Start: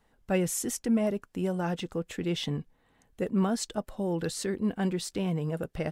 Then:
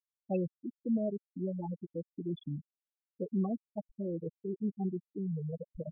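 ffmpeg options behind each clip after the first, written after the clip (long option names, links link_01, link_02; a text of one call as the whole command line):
ffmpeg -i in.wav -af "anlmdn=1.58,afftfilt=real='re*gte(hypot(re,im),0.158)':imag='im*gte(hypot(re,im),0.158)':win_size=1024:overlap=0.75,volume=-5dB" out.wav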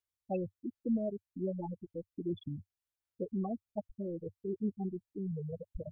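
ffmpeg -i in.wav -af "lowshelf=frequency=120:width_type=q:width=3:gain=7.5,aphaser=in_gain=1:out_gain=1:delay=1.3:decay=0.28:speed=1.3:type=sinusoidal" out.wav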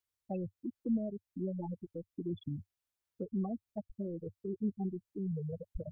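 ffmpeg -i in.wav -filter_complex "[0:a]acrossover=split=260[link_01][link_02];[link_02]acompressor=threshold=-44dB:ratio=3[link_03];[link_01][link_03]amix=inputs=2:normalize=0,volume=1.5dB" out.wav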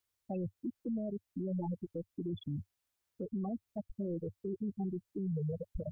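ffmpeg -i in.wav -af "alimiter=level_in=11.5dB:limit=-24dB:level=0:latency=1:release=16,volume=-11.5dB,volume=4.5dB" out.wav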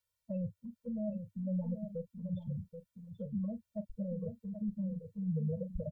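ffmpeg -i in.wav -filter_complex "[0:a]asplit=2[link_01][link_02];[link_02]adelay=38,volume=-14dB[link_03];[link_01][link_03]amix=inputs=2:normalize=0,aecho=1:1:782:0.376,afftfilt=real='re*eq(mod(floor(b*sr/1024/220),2),0)':imag='im*eq(mod(floor(b*sr/1024/220),2),0)':win_size=1024:overlap=0.75,volume=1dB" out.wav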